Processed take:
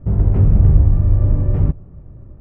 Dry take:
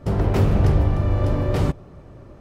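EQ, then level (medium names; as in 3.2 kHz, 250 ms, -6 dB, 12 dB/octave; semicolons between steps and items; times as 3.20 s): tone controls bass +7 dB, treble -14 dB; tilt EQ -2.5 dB/octave; peaking EQ 4.3 kHz -11 dB 0.47 oct; -9.5 dB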